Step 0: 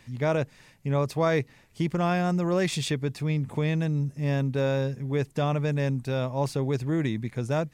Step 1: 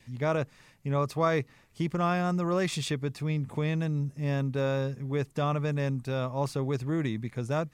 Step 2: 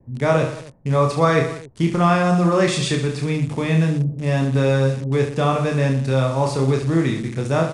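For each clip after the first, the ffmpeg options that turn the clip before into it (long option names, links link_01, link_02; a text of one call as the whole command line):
ffmpeg -i in.wav -af "adynamicequalizer=threshold=0.00316:dfrequency=1200:dqfactor=5:tfrequency=1200:tqfactor=5:attack=5:release=100:ratio=0.375:range=4:mode=boostabove:tftype=bell,volume=-3dB" out.wav
ffmpeg -i in.wav -filter_complex "[0:a]aecho=1:1:30|69|119.7|185.6|271.3:0.631|0.398|0.251|0.158|0.1,acrossover=split=460|810[link_01][link_02][link_03];[link_03]acrusher=bits=7:mix=0:aa=0.000001[link_04];[link_01][link_02][link_04]amix=inputs=3:normalize=0,aresample=22050,aresample=44100,volume=8.5dB" out.wav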